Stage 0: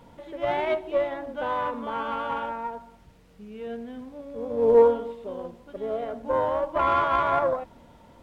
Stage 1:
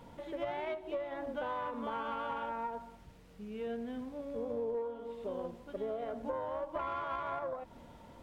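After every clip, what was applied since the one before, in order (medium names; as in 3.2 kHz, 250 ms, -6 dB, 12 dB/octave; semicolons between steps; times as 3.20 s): compression 16:1, threshold -32 dBFS, peak gain reduction 20.5 dB; trim -2 dB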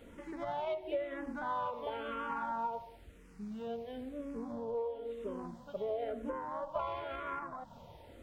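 barber-pole phaser -0.98 Hz; trim +3 dB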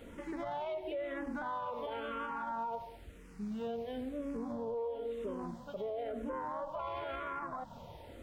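peak limiter -35 dBFS, peak gain reduction 11 dB; trim +3.5 dB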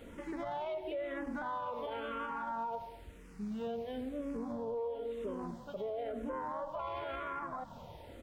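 delay 245 ms -22.5 dB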